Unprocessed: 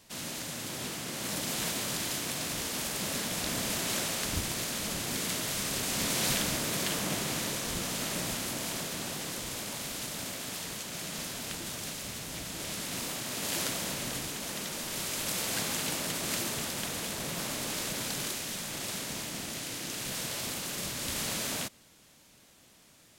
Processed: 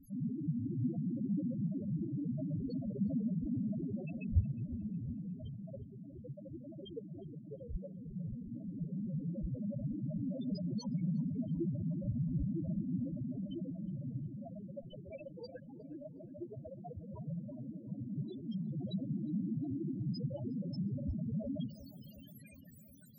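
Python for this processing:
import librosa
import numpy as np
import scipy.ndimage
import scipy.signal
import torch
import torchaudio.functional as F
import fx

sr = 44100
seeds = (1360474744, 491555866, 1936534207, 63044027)

p1 = fx.rattle_buzz(x, sr, strikes_db=-45.0, level_db=-37.0)
p2 = fx.rider(p1, sr, range_db=10, speed_s=0.5)
p3 = fx.quant_dither(p2, sr, seeds[0], bits=8, dither='triangular')
p4 = fx.spec_topn(p3, sr, count=2)
p5 = fx.phaser_stages(p4, sr, stages=4, low_hz=190.0, high_hz=2900.0, hz=0.11, feedback_pct=40)
p6 = p5 + fx.echo_filtered(p5, sr, ms=361, feedback_pct=72, hz=1300.0, wet_db=-16.0, dry=0)
y = F.gain(torch.from_numpy(p6), 9.5).numpy()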